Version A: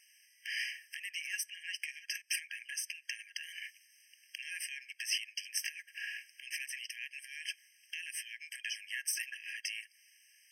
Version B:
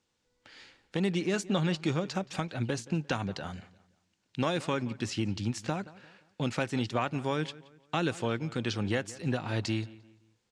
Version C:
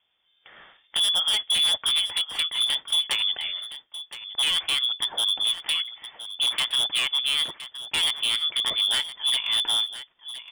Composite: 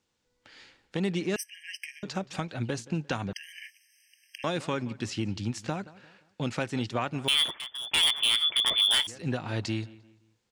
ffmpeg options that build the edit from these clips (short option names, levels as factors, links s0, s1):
-filter_complex "[0:a]asplit=2[s0][s1];[1:a]asplit=4[s2][s3][s4][s5];[s2]atrim=end=1.362[s6];[s0]atrim=start=1.358:end=2.032[s7];[s3]atrim=start=2.028:end=3.332[s8];[s1]atrim=start=3.328:end=4.442[s9];[s4]atrim=start=4.438:end=7.282[s10];[2:a]atrim=start=7.278:end=9.072[s11];[s5]atrim=start=9.068[s12];[s6][s7]acrossfade=d=0.004:c1=hsin:c2=hsin[s13];[s13][s8]acrossfade=d=0.004:c1=hsin:c2=hsin[s14];[s14][s9]acrossfade=d=0.004:c1=hsin:c2=hsin[s15];[s15][s10]acrossfade=d=0.004:c1=hsin:c2=hsin[s16];[s16][s11]acrossfade=d=0.004:c1=hsin:c2=hsin[s17];[s17][s12]acrossfade=d=0.004:c1=hsin:c2=hsin"